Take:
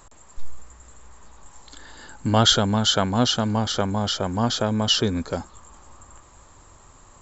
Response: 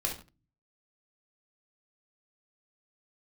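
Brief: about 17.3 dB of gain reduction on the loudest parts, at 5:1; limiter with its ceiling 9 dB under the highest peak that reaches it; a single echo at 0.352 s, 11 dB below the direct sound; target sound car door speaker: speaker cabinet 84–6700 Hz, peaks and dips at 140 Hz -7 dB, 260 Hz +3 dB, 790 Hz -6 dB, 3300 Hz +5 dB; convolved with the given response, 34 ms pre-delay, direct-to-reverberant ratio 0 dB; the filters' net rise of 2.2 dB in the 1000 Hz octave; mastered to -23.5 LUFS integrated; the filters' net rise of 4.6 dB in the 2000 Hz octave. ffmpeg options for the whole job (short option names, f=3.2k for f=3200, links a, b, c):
-filter_complex "[0:a]equalizer=f=1k:t=o:g=4.5,equalizer=f=2k:t=o:g=4.5,acompressor=threshold=-31dB:ratio=5,alimiter=level_in=2.5dB:limit=-24dB:level=0:latency=1,volume=-2.5dB,aecho=1:1:352:0.282,asplit=2[a][b];[1:a]atrim=start_sample=2205,adelay=34[c];[b][c]afir=irnorm=-1:irlink=0,volume=-4.5dB[d];[a][d]amix=inputs=2:normalize=0,highpass=84,equalizer=f=140:t=q:w=4:g=-7,equalizer=f=260:t=q:w=4:g=3,equalizer=f=790:t=q:w=4:g=-6,equalizer=f=3.3k:t=q:w=4:g=5,lowpass=f=6.7k:w=0.5412,lowpass=f=6.7k:w=1.3066,volume=9.5dB"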